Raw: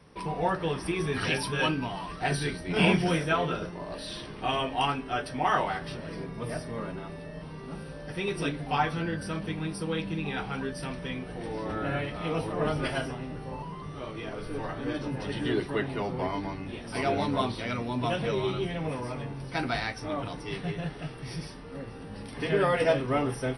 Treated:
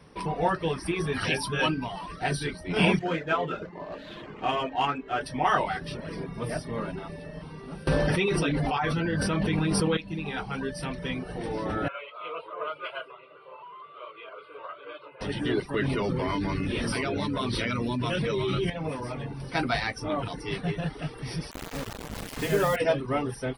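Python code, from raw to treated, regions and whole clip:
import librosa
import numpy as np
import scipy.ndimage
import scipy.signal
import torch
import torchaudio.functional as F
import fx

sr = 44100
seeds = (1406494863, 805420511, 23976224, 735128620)

y = fx.chain(x, sr, fx.median_filter(points=9),
    fx.lowpass(hz=3800.0, slope=12),
    fx.low_shelf(hz=120.0, db=-11.5), at=(2.99, 5.21))
y = fx.chain(y, sr, fx.high_shelf(hz=7400.0, db=-6.5),
    fx.env_flatten(amount_pct=100), at=(7.87, 9.97))
y = fx.chain(y, sr, fx.bandpass_edges(low_hz=790.0, high_hz=2300.0),
    fx.fixed_phaser(hz=1200.0, stages=8), at=(11.88, 15.21))
y = fx.chain(y, sr, fx.peak_eq(hz=750.0, db=-11.5, octaves=0.46),
    fx.env_flatten(amount_pct=100), at=(15.74, 18.7))
y = fx.chain(y, sr, fx.low_shelf(hz=64.0, db=10.0),
    fx.quant_dither(seeds[0], bits=6, dither='none'), at=(21.51, 22.76))
y = fx.rider(y, sr, range_db=4, speed_s=2.0)
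y = fx.dereverb_blind(y, sr, rt60_s=0.51)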